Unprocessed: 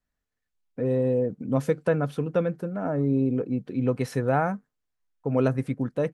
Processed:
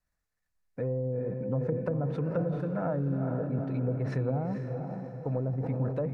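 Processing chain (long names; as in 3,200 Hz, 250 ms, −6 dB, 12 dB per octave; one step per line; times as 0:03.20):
treble cut that deepens with the level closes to 390 Hz, closed at −19 dBFS
thirty-one-band graphic EQ 250 Hz −9 dB, 400 Hz −8 dB, 3,150 Hz −9 dB
downward compressor 2.5 to 1, threshold −29 dBFS, peak gain reduction 5.5 dB
on a send: feedback delay with all-pass diffusion 462 ms, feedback 45%, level −5 dB
on the sum: level that may fall only so fast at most 60 dB per second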